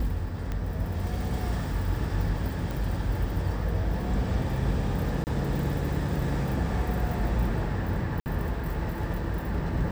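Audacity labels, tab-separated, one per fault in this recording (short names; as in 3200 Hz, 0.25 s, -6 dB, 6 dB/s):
0.520000	0.520000	pop -20 dBFS
2.710000	2.710000	pop
5.240000	5.270000	gap 29 ms
8.200000	8.260000	gap 59 ms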